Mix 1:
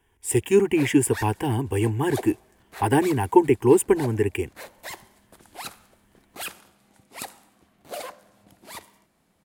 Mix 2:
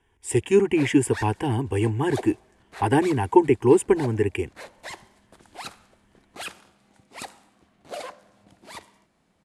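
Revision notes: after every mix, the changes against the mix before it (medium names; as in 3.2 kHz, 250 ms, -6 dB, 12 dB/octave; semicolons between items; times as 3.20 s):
master: add Bessel low-pass 7.6 kHz, order 8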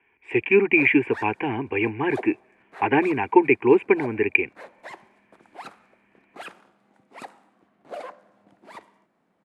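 speech: add resonant low-pass 2.4 kHz, resonance Q 15; master: add three-band isolator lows -20 dB, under 160 Hz, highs -14 dB, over 2.3 kHz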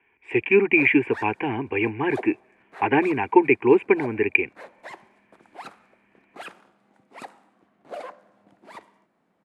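no change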